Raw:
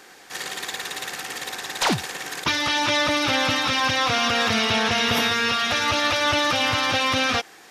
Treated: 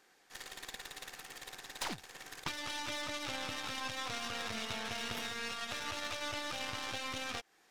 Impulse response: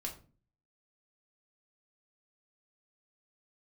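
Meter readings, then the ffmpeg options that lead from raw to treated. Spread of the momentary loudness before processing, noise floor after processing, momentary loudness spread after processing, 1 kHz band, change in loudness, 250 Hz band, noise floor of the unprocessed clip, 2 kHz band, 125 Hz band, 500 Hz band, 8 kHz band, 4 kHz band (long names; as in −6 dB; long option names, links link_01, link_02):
10 LU, −68 dBFS, 9 LU, −19.0 dB, −18.5 dB, −20.0 dB, −48 dBFS, −18.5 dB, −19.0 dB, −19.5 dB, −15.0 dB, −18.0 dB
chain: -af "aeval=exprs='0.355*(cos(1*acos(clip(val(0)/0.355,-1,1)))-cos(1*PI/2))+0.126*(cos(2*acos(clip(val(0)/0.355,-1,1)))-cos(2*PI/2))+0.0316*(cos(3*acos(clip(val(0)/0.355,-1,1)))-cos(3*PI/2))+0.00282*(cos(6*acos(clip(val(0)/0.355,-1,1)))-cos(6*PI/2))+0.0251*(cos(7*acos(clip(val(0)/0.355,-1,1)))-cos(7*PI/2))':channel_layout=same,acompressor=threshold=-30dB:ratio=3,volume=-7.5dB"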